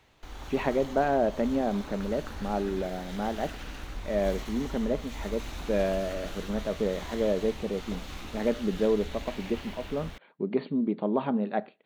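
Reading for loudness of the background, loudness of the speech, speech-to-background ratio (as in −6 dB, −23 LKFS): −41.5 LKFS, −30.5 LKFS, 11.0 dB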